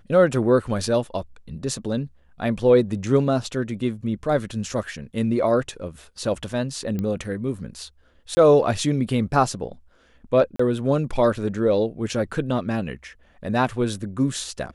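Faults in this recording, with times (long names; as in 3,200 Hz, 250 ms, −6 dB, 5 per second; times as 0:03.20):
0:06.99: click −16 dBFS
0:08.35–0:08.37: drop-out 20 ms
0:10.56–0:10.59: drop-out 34 ms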